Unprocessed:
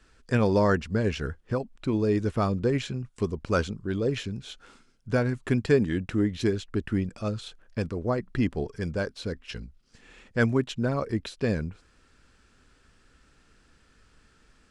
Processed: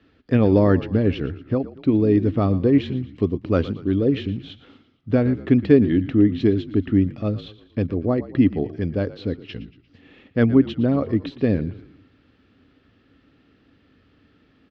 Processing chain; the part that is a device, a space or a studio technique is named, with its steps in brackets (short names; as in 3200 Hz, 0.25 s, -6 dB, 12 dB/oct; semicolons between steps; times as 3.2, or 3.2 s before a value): frequency-shifting delay pedal into a guitar cabinet (frequency-shifting echo 0.116 s, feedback 49%, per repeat -49 Hz, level -16 dB; speaker cabinet 94–3500 Hz, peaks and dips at 95 Hz +7 dB, 280 Hz +10 dB, 970 Hz -8 dB, 1500 Hz -9 dB, 2400 Hz -4 dB); gain +4.5 dB